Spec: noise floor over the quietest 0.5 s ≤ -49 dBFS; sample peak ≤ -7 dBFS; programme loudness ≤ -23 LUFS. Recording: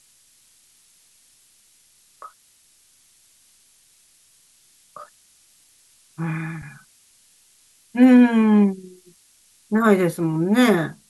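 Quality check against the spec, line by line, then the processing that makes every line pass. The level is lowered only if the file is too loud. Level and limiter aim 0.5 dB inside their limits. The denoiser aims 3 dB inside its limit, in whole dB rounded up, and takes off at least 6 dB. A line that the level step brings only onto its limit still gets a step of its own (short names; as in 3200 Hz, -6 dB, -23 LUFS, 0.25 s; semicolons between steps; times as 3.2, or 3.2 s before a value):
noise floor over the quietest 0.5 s -58 dBFS: OK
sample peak -4.5 dBFS: fail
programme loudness -18.0 LUFS: fail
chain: gain -5.5 dB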